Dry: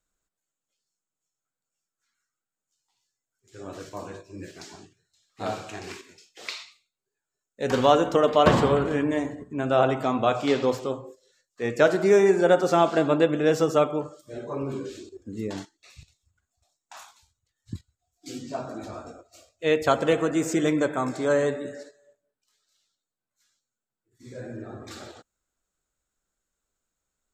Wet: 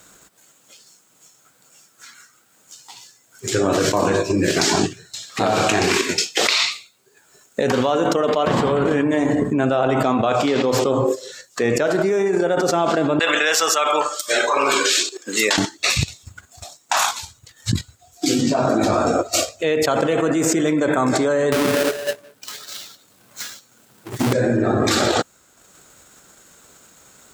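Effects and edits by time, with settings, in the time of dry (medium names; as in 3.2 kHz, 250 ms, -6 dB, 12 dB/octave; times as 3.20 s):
13.19–15.58 s: high-pass 1.4 kHz
21.52–24.33 s: square wave that keeps the level
whole clip: transient shaper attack +3 dB, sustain -6 dB; high-pass 110 Hz; level flattener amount 100%; trim -5.5 dB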